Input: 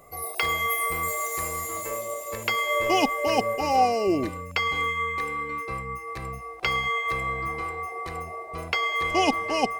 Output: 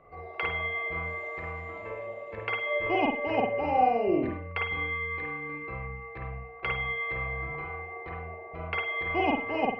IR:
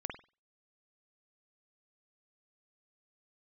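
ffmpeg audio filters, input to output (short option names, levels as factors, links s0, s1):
-filter_complex "[0:a]lowpass=f=2600:w=0.5412,lowpass=f=2600:w=1.3066[s0];[1:a]atrim=start_sample=2205[s1];[s0][s1]afir=irnorm=-1:irlink=0,volume=0.75"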